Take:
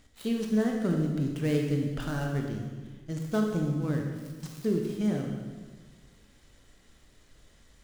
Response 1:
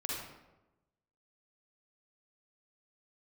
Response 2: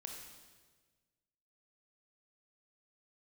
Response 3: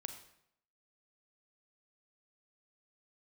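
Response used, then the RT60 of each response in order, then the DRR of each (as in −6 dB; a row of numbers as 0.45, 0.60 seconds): 2; 1.0, 1.4, 0.75 seconds; −4.5, 1.0, 7.0 decibels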